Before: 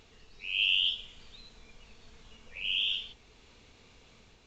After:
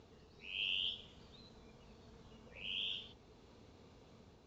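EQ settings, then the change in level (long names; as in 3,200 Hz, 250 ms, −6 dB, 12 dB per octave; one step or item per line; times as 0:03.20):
high-pass filter 75 Hz 12 dB per octave
high-frequency loss of the air 130 metres
parametric band 2,400 Hz −13 dB 1.6 octaves
+2.0 dB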